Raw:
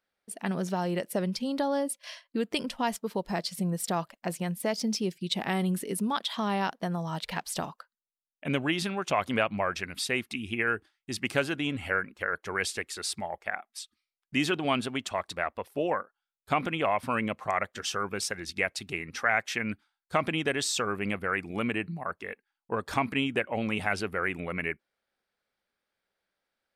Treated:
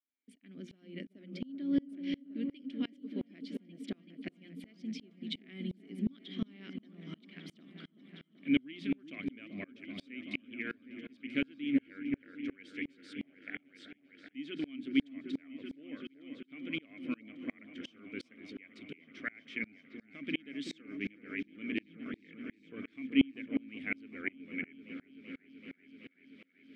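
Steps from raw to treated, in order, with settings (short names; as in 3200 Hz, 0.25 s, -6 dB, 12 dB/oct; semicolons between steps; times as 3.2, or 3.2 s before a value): HPF 81 Hz 24 dB/oct; high shelf 5000 Hz -6.5 dB; notches 60/120/180/240 Hz; reverse; upward compressor, threshold -35 dBFS; reverse; vowel filter i; on a send: repeats that get brighter 0.382 s, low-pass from 750 Hz, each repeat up 1 oct, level -6 dB; on the sum: dB-ramp tremolo swelling 2.8 Hz, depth 31 dB; gain +10 dB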